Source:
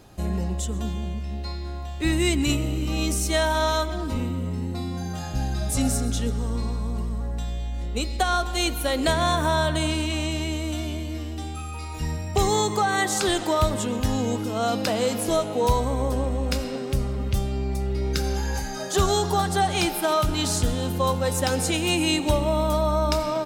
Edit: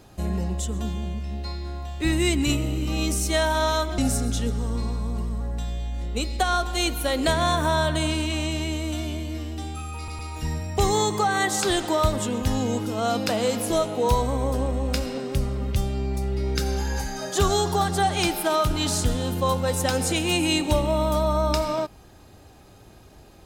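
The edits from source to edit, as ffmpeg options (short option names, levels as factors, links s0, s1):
-filter_complex "[0:a]asplit=4[s0][s1][s2][s3];[s0]atrim=end=3.982[s4];[s1]atrim=start=5.778:end=11.882[s5];[s2]atrim=start=11.768:end=11.882[s6];[s3]atrim=start=11.768[s7];[s4][s5]acrossfade=d=0.004:c1=hsin:c2=hsin[s8];[s8][s6]acrossfade=d=0.004:c1=hsin:c2=hsin[s9];[s9][s7]acrossfade=d=0.004:c1=hsin:c2=hsin"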